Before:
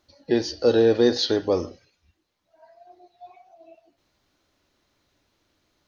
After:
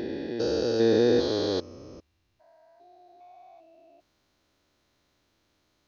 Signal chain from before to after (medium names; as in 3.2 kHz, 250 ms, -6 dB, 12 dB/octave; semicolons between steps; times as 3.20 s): spectrogram pixelated in time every 400 ms